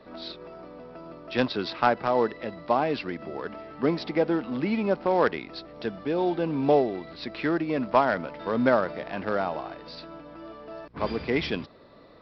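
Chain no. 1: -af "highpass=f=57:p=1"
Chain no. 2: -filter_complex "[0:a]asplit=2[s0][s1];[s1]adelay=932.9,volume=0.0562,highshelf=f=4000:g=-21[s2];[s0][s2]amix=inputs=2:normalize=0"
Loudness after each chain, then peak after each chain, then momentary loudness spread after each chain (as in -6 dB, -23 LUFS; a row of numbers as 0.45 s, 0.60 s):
-27.0 LUFS, -27.0 LUFS; -7.0 dBFS, -7.0 dBFS; 19 LU, 19 LU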